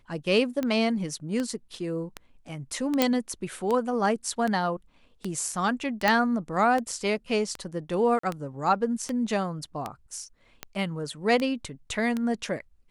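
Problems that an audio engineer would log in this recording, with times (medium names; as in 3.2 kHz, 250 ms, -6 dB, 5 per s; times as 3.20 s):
tick 78 rpm -16 dBFS
3.02 s: pop -6 dBFS
6.08 s: pop -8 dBFS
8.19–8.23 s: dropout 44 ms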